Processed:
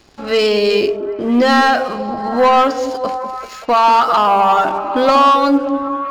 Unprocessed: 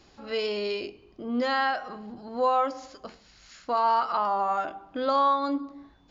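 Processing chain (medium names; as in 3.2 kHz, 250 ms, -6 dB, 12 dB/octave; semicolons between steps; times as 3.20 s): waveshaping leveller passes 2; repeats whose band climbs or falls 193 ms, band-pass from 270 Hz, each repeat 0.7 oct, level -4 dB; trim +8.5 dB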